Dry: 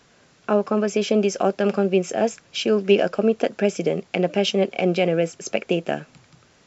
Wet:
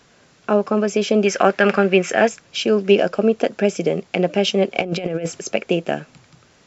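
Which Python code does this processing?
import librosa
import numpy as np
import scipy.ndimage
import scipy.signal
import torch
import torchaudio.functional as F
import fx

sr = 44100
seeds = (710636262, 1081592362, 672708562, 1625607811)

y = fx.peak_eq(x, sr, hz=1800.0, db=13.5, octaves=1.5, at=(1.25, 2.27), fade=0.02)
y = fx.over_compress(y, sr, threshold_db=-24.0, ratio=-0.5, at=(4.75, 5.41))
y = y * librosa.db_to_amplitude(2.5)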